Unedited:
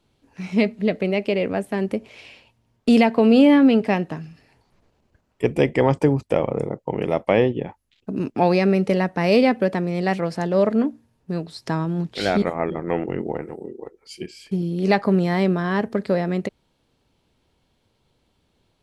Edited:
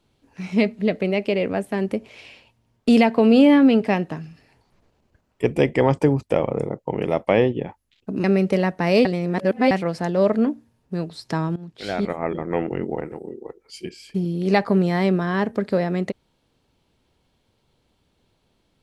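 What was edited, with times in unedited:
0:08.24–0:08.61: remove
0:09.42–0:10.08: reverse
0:11.93–0:12.76: fade in, from −16.5 dB

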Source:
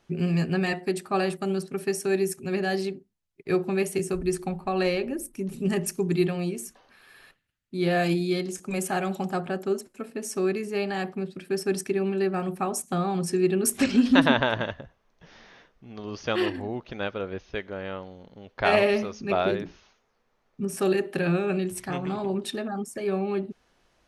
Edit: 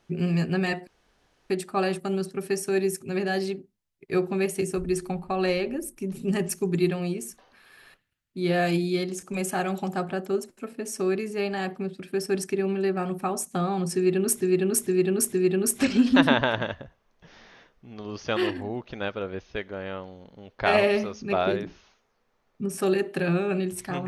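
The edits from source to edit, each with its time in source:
0:00.87: splice in room tone 0.63 s
0:13.32–0:13.78: repeat, 4 plays

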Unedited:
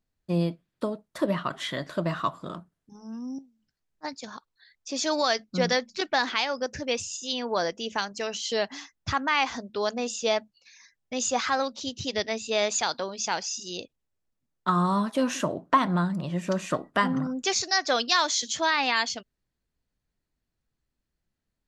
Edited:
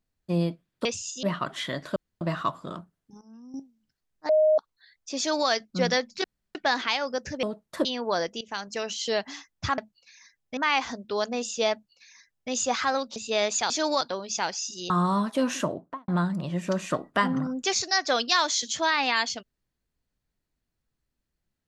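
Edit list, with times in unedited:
0:00.85–0:01.27: swap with 0:06.91–0:07.29
0:02.00: splice in room tone 0.25 s
0:03.00–0:03.33: clip gain −11 dB
0:04.08–0:04.37: beep over 620 Hz −16.5 dBFS
0:04.97–0:05.28: duplicate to 0:12.90
0:06.03: splice in room tone 0.31 s
0:07.85–0:08.13: fade in, from −18.5 dB
0:10.37–0:11.16: duplicate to 0:09.22
0:11.81–0:12.36: remove
0:13.79–0:14.70: remove
0:15.42–0:15.88: fade out and dull

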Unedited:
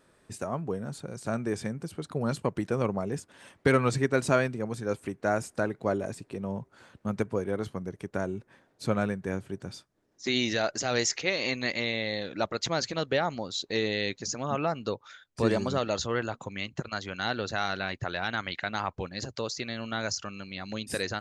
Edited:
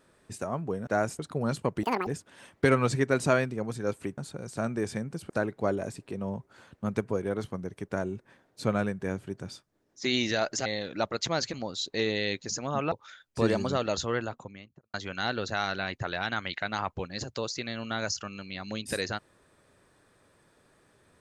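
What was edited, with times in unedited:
0:00.87–0:01.99: swap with 0:05.20–0:05.52
0:02.63–0:03.09: play speed 194%
0:10.88–0:12.06: remove
0:12.94–0:13.30: remove
0:14.68–0:14.93: remove
0:16.09–0:16.95: fade out and dull

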